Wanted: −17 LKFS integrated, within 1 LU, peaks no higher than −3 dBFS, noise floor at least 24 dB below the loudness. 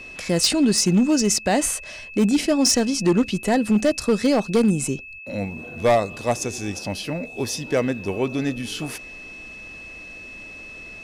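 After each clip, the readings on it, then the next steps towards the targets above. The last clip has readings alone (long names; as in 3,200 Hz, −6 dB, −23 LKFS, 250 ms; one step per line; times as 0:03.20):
share of clipped samples 1.2%; peaks flattened at −12.0 dBFS; interfering tone 2,600 Hz; level of the tone −37 dBFS; integrated loudness −21.5 LKFS; sample peak −12.0 dBFS; target loudness −17.0 LKFS
→ clipped peaks rebuilt −12 dBFS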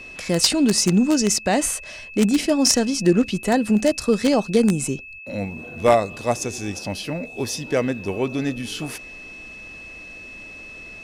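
share of clipped samples 0.0%; interfering tone 2,600 Hz; level of the tone −37 dBFS
→ notch filter 2,600 Hz, Q 30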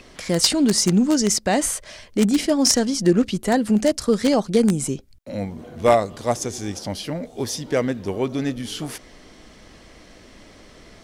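interfering tone none found; integrated loudness −21.0 LKFS; sample peak −3.0 dBFS; target loudness −17.0 LKFS
→ level +4 dB
brickwall limiter −3 dBFS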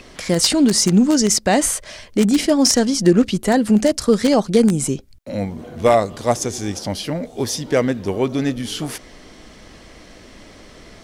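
integrated loudness −17.5 LKFS; sample peak −3.0 dBFS; background noise floor −44 dBFS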